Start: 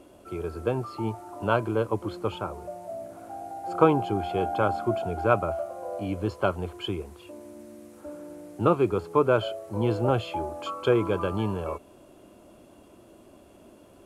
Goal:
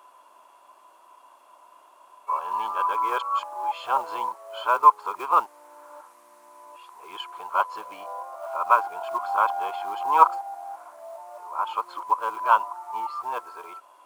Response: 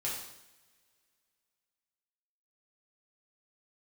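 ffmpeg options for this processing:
-af "areverse,acrusher=bits=7:mode=log:mix=0:aa=0.000001,highpass=f=990:t=q:w=8,volume=0.794"

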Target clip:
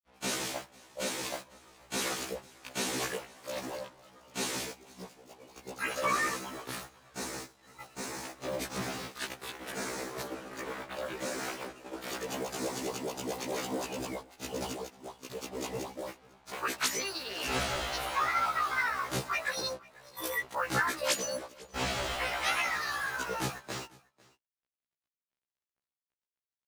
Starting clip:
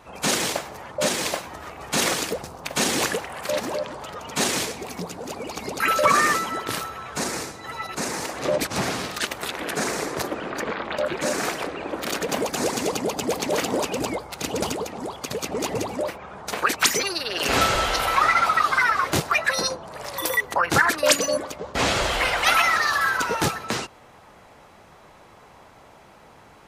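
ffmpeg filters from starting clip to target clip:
-af "acrusher=bits=5:mix=0:aa=0.5,agate=range=0.251:threshold=0.0316:ratio=16:detection=peak,aecho=1:1:497:0.0631,afftfilt=real='re*1.73*eq(mod(b,3),0)':imag='im*1.73*eq(mod(b,3),0)':win_size=2048:overlap=0.75,volume=0.376"

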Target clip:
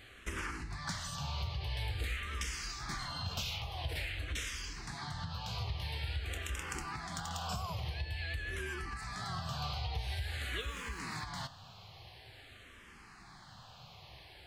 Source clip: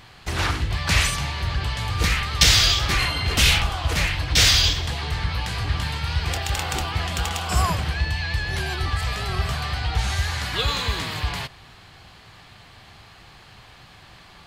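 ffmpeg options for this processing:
-filter_complex "[0:a]asplit=3[s0][s1][s2];[s0]afade=t=out:st=9.22:d=0.02[s3];[s1]highpass=83,afade=t=in:st=9.22:d=0.02,afade=t=out:st=9.73:d=0.02[s4];[s2]afade=t=in:st=9.73:d=0.02[s5];[s3][s4][s5]amix=inputs=3:normalize=0,acompressor=threshold=0.0398:ratio=12,flanger=delay=7.5:depth=8.7:regen=78:speed=0.24:shape=sinusoidal,asettb=1/sr,asplit=3[s6][s7][s8];[s6]atrim=end=10.604[s9];[s7]atrim=start=10.6:end=11.02,asetpts=PTS-STARTPTS,afade=t=in:d=0.004:c=qsin,afade=t=out:st=0.416:d=0.004:c=qsin,aeval=exprs='sgn(val(0))*max(abs(val(0))-0.00266,0)':c=same[s10];[s8]atrim=start=11.016[s11];[s9][s10]acrossfade=d=0.004:c1=hsin:c2=qsin[s12];[s12][s11]acrossfade=d=0.004:c1=qsin:c2=hsin,asplit=2[s13][s14];[s14]afreqshift=-0.48[s15];[s13][s15]amix=inputs=2:normalize=1"

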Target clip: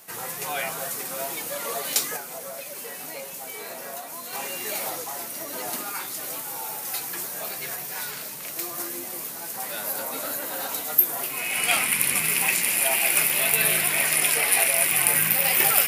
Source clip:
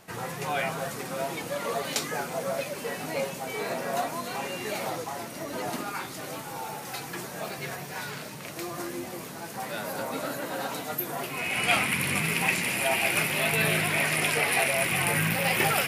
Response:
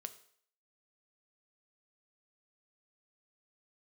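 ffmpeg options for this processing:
-filter_complex "[0:a]aemphasis=mode=production:type=bsi,asettb=1/sr,asplit=3[s0][s1][s2];[s0]atrim=end=2.164[s3];[s1]atrim=start=2.16:end=4.33,asetpts=PTS-STARTPTS,afade=t=in:d=0.004:c=qsin,afade=t=out:st=2.166:d=0.004:c=qsin,acompressor=threshold=0.0251:ratio=6[s4];[s2]atrim=start=4.326[s5];[s3][s4]acrossfade=d=0.004:c1=hsin:c2=qsin[s6];[s6][s5]acrossfade=d=0.004:c1=qsin:c2=hsin,volume=0.891"

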